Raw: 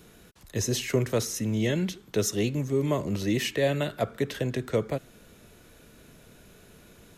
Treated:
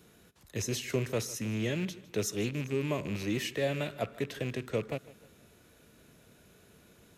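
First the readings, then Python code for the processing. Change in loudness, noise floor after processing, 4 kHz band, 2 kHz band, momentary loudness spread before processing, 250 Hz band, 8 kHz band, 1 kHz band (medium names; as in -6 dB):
-6.0 dB, -61 dBFS, -5.5 dB, -3.5 dB, 4 LU, -6.0 dB, -6.0 dB, -6.0 dB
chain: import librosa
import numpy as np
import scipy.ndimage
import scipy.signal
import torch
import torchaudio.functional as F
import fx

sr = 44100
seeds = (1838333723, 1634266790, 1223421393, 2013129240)

y = fx.rattle_buzz(x, sr, strikes_db=-31.0, level_db=-26.0)
y = scipy.signal.sosfilt(scipy.signal.butter(2, 55.0, 'highpass', fs=sr, output='sos'), y)
y = fx.echo_feedback(y, sr, ms=155, feedback_pct=44, wet_db=-19.5)
y = F.gain(torch.from_numpy(y), -6.0).numpy()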